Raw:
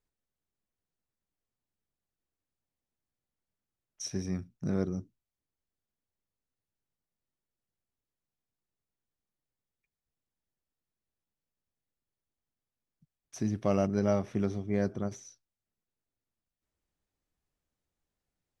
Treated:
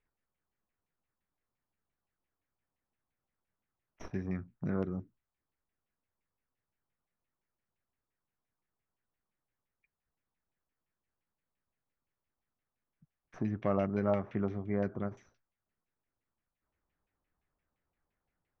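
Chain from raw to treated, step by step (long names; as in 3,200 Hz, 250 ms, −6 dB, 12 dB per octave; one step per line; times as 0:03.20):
stylus tracing distortion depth 0.045 ms
in parallel at +2 dB: downward compressor, threshold −38 dBFS, peak gain reduction 15 dB
on the sum: auto-filter low-pass saw down 5.8 Hz 880–2,600 Hz
level −6 dB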